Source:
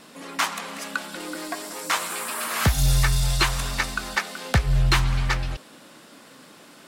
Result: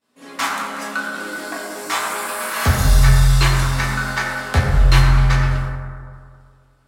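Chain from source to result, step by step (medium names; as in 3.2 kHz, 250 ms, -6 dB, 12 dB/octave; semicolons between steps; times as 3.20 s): expander -34 dBFS; reverberation RT60 2.1 s, pre-delay 6 ms, DRR -5.5 dB; trim -1.5 dB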